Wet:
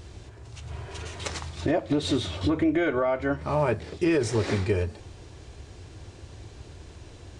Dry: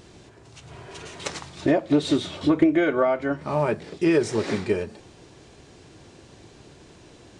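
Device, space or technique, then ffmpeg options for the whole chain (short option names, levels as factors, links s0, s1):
car stereo with a boomy subwoofer: -af "lowshelf=f=120:t=q:w=1.5:g=10.5,alimiter=limit=0.178:level=0:latency=1:release=60"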